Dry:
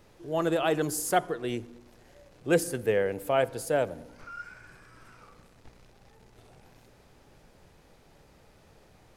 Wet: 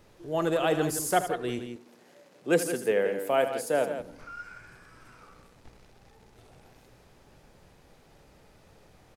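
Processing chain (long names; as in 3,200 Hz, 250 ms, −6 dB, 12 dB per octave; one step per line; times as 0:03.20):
0:01.59–0:04.00: high-pass filter 170 Hz 24 dB per octave
loudspeakers that aren't time-aligned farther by 27 metres −12 dB, 58 metres −10 dB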